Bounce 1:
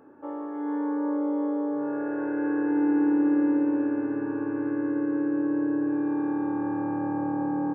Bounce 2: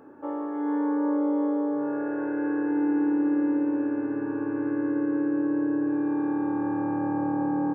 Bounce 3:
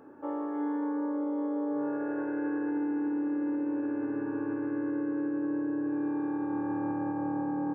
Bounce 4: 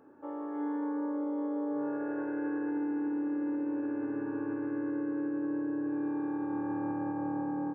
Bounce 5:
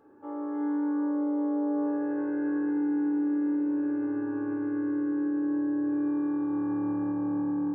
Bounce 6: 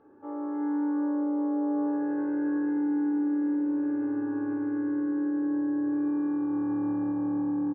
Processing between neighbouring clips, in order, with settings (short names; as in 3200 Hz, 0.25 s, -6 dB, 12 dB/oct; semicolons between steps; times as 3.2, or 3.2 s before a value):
vocal rider within 4 dB 2 s
limiter -22.5 dBFS, peak gain reduction 6 dB; gain -2.5 dB
AGC gain up to 4 dB; gain -6 dB
reverb RT60 0.45 s, pre-delay 3 ms, DRR 4 dB; gain -2.5 dB
air absorption 260 m; echo 0.141 s -11 dB; gain +1 dB